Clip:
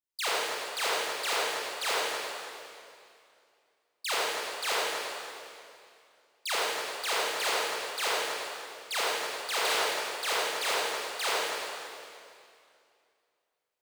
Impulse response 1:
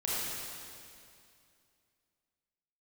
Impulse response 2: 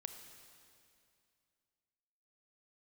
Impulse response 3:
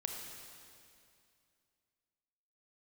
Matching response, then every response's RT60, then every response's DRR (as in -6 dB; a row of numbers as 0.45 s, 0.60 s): 1; 2.4 s, 2.4 s, 2.4 s; -8.0 dB, 6.5 dB, 1.5 dB